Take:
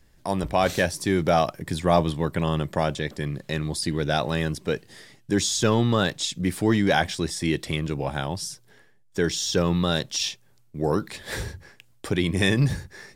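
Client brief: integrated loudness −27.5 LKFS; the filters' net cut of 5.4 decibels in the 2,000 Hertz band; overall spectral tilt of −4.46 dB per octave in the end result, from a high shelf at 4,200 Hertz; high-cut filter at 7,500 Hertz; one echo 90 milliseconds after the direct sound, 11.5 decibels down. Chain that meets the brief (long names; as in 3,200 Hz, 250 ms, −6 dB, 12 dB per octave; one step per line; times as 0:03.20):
low-pass filter 7,500 Hz
parametric band 2,000 Hz −9 dB
high-shelf EQ 4,200 Hz +8.5 dB
single-tap delay 90 ms −11.5 dB
level −3 dB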